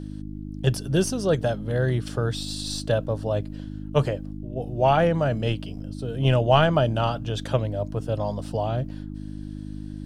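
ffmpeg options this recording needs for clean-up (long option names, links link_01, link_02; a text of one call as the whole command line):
ffmpeg -i in.wav -af "bandreject=frequency=51.1:width_type=h:width=4,bandreject=frequency=102.2:width_type=h:width=4,bandreject=frequency=153.3:width_type=h:width=4,bandreject=frequency=204.4:width_type=h:width=4,bandreject=frequency=255.5:width_type=h:width=4,bandreject=frequency=306.6:width_type=h:width=4" out.wav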